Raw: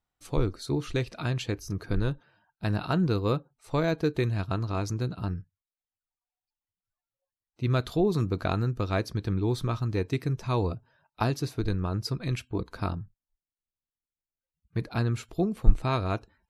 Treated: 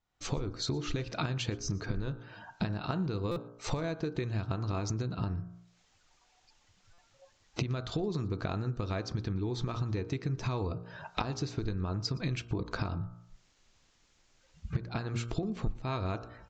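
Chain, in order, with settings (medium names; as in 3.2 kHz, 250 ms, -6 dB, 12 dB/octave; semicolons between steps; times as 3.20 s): recorder AGC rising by 46 dB/s; de-hum 58.52 Hz, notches 27; compression 4:1, threshold -32 dBFS, peak gain reduction 19 dB; on a send: delay 118 ms -23 dB; on the sum: resampled via 16 kHz; buffer glitch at 3.31/6.93 s, samples 256, times 8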